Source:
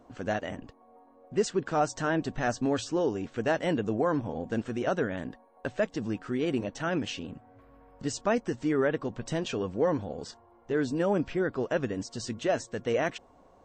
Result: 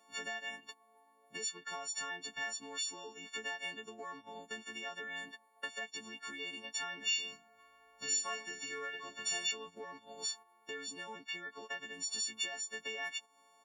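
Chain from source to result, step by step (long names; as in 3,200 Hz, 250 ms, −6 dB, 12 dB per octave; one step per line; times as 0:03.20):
every partial snapped to a pitch grid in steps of 4 semitones
downward compressor 16 to 1, threshold −39 dBFS, peak gain reduction 19.5 dB
tilt shelving filter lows −7 dB, about 1,200 Hz
0:07.01–0:09.51: reverse bouncing-ball delay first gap 20 ms, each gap 1.4×, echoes 5
noise gate −49 dBFS, range −9 dB
high-pass filter 410 Hz 6 dB per octave
comb filter 4.6 ms, depth 57%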